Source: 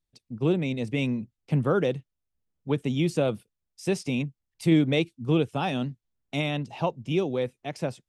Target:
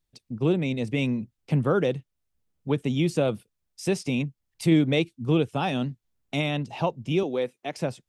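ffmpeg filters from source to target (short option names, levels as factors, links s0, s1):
-filter_complex "[0:a]asettb=1/sr,asplit=3[s0][s1][s2];[s0]atrim=end=7.234[s3];[s1]atrim=start=7.23:end=7.77,asetpts=PTS-STARTPTS,afade=t=in:d=0.004:c=qsin,afade=t=out:st=0.536:d=0.004:c=qsin,highpass=230[s4];[s2]atrim=start=7.766[s5];[s3][s4]acrossfade=d=0.004:c1=hsin:c2=qsin[s6];[s6][s5]acrossfade=d=0.004:c1=qsin:c2=hsin,asplit=2[s7][s8];[s8]acompressor=threshold=0.0126:ratio=6,volume=0.708[s9];[s7][s9]amix=inputs=2:normalize=0"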